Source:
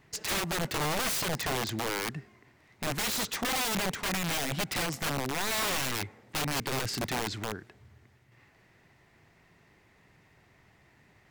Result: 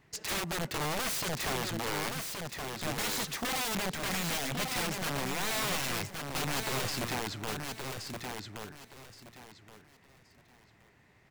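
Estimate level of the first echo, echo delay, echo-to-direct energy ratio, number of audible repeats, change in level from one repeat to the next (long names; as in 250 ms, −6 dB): −5.0 dB, 1,123 ms, −4.5 dB, 3, −12.0 dB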